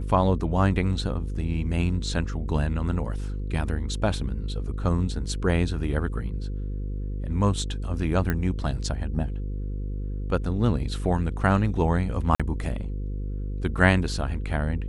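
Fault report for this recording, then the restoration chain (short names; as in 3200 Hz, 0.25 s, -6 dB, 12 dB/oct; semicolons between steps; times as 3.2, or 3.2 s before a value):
buzz 50 Hz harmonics 10 -30 dBFS
8.3 pop -13 dBFS
12.35–12.4 gap 46 ms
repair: de-click; de-hum 50 Hz, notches 10; interpolate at 12.35, 46 ms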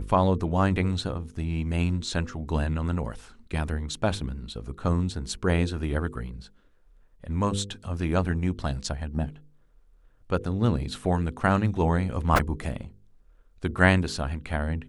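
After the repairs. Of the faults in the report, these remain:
8.3 pop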